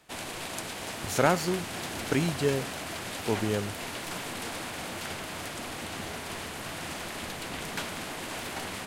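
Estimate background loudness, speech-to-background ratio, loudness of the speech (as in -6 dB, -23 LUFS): -35.5 LUFS, 6.0 dB, -29.5 LUFS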